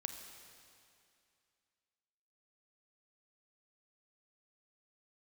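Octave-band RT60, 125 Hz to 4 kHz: 2.4, 2.5, 2.4, 2.5, 2.5, 2.4 seconds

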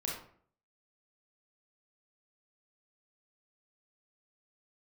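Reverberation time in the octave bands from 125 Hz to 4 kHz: 0.65, 0.60, 0.55, 0.50, 0.45, 0.35 seconds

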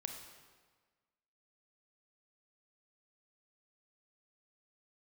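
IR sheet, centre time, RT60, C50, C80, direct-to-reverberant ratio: 38 ms, 1.5 s, 5.0 dB, 7.0 dB, 3.5 dB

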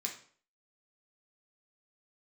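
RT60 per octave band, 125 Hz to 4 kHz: 0.50, 0.50, 0.50, 0.50, 0.45, 0.40 seconds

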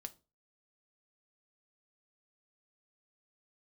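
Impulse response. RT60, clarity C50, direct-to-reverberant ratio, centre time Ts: 0.30 s, 20.5 dB, 8.0 dB, 3 ms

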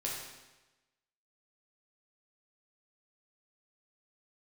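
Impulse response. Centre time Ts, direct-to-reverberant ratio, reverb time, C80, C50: 64 ms, −4.0 dB, 1.1 s, 3.5 dB, 1.0 dB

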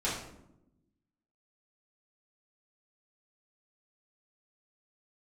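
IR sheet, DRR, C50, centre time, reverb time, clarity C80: −9.0 dB, 3.0 dB, 48 ms, 0.85 s, 6.5 dB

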